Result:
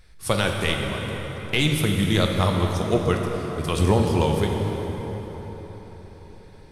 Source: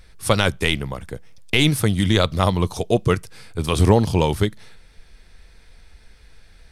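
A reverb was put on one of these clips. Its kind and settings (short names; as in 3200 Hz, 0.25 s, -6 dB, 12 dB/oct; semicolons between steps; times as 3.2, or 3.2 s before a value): plate-style reverb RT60 5 s, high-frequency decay 0.6×, DRR 1 dB; gain -5 dB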